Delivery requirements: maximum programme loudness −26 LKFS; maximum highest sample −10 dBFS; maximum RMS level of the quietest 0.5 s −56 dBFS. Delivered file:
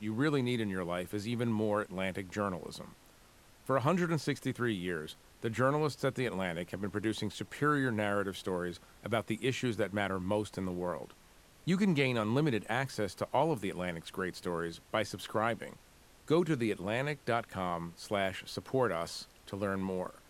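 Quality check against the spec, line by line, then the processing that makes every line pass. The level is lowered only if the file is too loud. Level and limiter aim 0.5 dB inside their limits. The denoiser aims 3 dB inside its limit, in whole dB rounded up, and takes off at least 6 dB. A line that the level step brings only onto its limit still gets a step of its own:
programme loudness −34.0 LKFS: in spec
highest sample −15.5 dBFS: in spec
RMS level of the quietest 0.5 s −60 dBFS: in spec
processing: no processing needed

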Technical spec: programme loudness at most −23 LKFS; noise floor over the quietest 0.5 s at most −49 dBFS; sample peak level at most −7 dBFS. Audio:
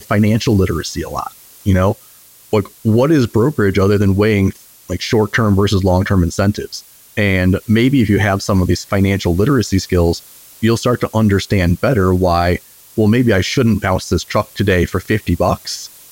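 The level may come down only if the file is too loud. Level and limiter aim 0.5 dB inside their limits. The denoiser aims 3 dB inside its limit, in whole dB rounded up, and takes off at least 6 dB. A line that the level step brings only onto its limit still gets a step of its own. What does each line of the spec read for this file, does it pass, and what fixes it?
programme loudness −15.0 LKFS: out of spec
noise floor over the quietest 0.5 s −44 dBFS: out of spec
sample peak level −4.0 dBFS: out of spec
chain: level −8.5 dB

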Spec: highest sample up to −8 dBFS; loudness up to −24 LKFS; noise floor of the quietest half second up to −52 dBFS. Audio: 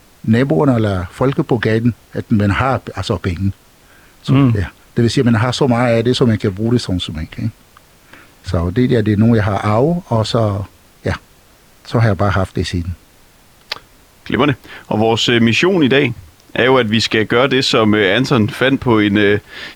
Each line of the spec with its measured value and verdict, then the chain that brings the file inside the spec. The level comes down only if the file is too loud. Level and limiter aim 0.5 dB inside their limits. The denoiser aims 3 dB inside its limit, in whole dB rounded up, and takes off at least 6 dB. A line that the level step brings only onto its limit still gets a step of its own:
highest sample −2.0 dBFS: out of spec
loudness −15.0 LKFS: out of spec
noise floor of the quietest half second −47 dBFS: out of spec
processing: level −9.5 dB

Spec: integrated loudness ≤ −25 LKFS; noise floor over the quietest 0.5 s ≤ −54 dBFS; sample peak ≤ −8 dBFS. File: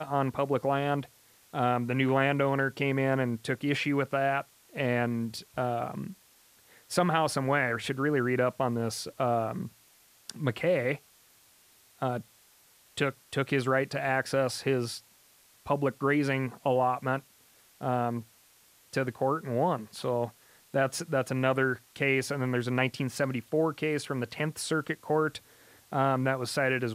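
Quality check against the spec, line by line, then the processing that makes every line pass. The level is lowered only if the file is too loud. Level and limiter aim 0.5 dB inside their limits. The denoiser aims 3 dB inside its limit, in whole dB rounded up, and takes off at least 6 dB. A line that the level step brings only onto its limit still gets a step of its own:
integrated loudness −29.5 LKFS: in spec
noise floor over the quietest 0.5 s −61 dBFS: in spec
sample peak −11.5 dBFS: in spec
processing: no processing needed

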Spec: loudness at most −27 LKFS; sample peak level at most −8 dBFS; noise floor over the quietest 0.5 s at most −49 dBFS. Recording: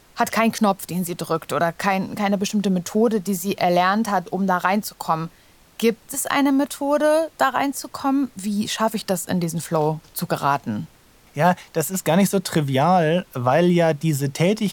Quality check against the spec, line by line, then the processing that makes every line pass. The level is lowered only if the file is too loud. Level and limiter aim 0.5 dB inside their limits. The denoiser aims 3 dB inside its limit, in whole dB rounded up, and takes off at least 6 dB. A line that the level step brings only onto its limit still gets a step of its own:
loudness −21.0 LKFS: out of spec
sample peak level −4.0 dBFS: out of spec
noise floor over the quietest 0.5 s −52 dBFS: in spec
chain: level −6.5 dB

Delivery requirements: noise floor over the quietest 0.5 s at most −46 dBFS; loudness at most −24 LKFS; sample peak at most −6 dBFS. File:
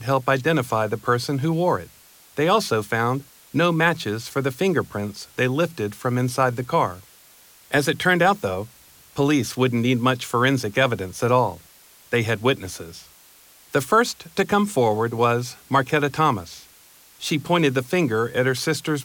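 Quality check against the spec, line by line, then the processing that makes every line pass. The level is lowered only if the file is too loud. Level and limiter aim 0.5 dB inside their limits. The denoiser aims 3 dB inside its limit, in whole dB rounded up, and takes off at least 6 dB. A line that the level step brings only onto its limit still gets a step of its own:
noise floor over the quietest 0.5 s −51 dBFS: in spec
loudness −22.0 LKFS: out of spec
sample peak −7.0 dBFS: in spec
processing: level −2.5 dB

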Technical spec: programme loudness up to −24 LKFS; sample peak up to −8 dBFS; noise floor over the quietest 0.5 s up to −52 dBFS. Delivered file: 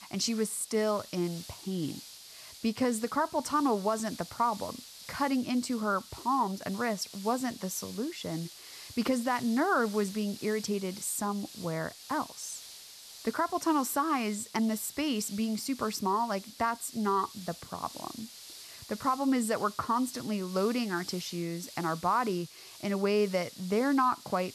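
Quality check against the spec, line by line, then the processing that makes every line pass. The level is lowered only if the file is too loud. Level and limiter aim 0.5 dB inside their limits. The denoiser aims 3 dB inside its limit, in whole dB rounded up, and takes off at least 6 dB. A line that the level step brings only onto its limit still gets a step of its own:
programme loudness −31.5 LKFS: in spec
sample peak −17.0 dBFS: in spec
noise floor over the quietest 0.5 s −49 dBFS: out of spec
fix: broadband denoise 6 dB, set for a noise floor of −49 dBFS

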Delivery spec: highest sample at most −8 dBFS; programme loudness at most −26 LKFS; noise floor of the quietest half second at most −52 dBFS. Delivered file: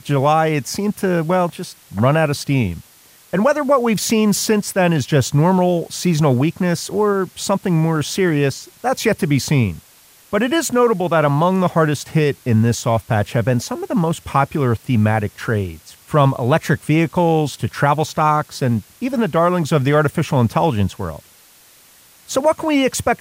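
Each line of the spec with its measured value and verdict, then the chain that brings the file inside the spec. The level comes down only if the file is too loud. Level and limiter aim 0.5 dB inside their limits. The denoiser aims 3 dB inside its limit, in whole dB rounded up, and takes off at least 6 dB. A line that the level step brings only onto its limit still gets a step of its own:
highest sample −4.0 dBFS: out of spec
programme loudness −17.5 LKFS: out of spec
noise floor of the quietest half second −49 dBFS: out of spec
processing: level −9 dB

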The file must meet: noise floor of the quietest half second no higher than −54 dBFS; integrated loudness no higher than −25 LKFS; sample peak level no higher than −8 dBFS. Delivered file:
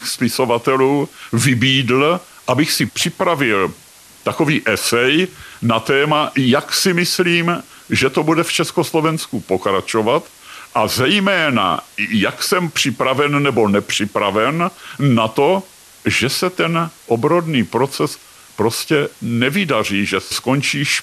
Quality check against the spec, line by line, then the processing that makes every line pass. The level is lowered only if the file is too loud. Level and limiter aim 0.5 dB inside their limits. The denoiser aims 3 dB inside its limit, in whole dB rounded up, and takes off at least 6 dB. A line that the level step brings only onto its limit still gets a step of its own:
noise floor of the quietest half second −44 dBFS: out of spec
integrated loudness −16.5 LKFS: out of spec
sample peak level −3.0 dBFS: out of spec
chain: broadband denoise 6 dB, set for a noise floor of −44 dBFS
level −9 dB

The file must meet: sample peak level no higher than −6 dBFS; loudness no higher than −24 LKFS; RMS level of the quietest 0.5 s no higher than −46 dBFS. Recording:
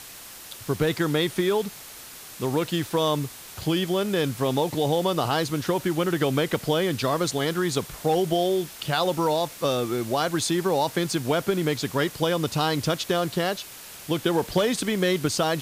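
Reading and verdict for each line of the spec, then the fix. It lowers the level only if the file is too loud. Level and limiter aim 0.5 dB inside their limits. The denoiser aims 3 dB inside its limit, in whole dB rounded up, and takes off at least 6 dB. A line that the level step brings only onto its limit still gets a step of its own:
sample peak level −10.0 dBFS: in spec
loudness −25.0 LKFS: in spec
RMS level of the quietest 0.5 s −43 dBFS: out of spec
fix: broadband denoise 6 dB, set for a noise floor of −43 dBFS

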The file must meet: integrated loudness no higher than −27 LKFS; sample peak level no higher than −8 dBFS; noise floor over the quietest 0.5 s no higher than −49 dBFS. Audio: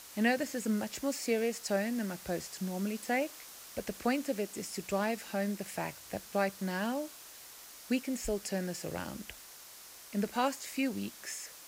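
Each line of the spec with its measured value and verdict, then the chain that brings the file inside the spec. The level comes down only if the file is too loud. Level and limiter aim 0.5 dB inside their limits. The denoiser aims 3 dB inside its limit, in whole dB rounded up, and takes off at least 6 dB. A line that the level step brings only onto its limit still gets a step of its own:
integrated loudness −35.0 LKFS: in spec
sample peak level −16.0 dBFS: in spec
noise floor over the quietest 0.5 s −52 dBFS: in spec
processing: no processing needed

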